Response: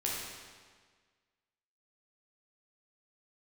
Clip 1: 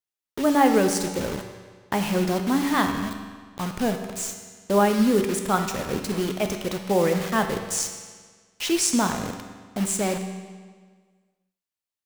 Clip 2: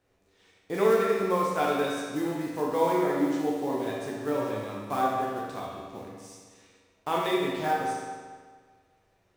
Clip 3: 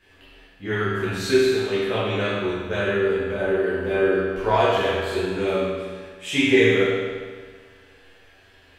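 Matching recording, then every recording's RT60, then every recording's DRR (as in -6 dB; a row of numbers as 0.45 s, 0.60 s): 2; 1.6 s, 1.6 s, 1.6 s; 5.0 dB, -5.0 dB, -11.5 dB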